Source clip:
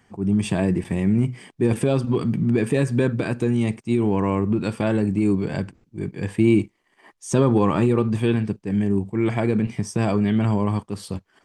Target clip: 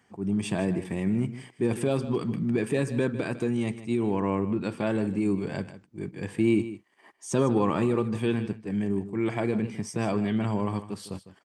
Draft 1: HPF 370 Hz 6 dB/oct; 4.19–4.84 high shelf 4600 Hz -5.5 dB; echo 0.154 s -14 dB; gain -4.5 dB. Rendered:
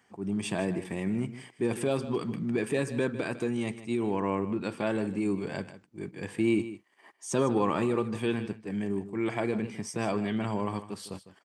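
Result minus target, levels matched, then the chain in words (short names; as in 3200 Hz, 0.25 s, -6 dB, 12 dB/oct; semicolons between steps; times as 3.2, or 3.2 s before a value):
125 Hz band -2.5 dB
HPF 160 Hz 6 dB/oct; 4.19–4.84 high shelf 4600 Hz -5.5 dB; echo 0.154 s -14 dB; gain -4.5 dB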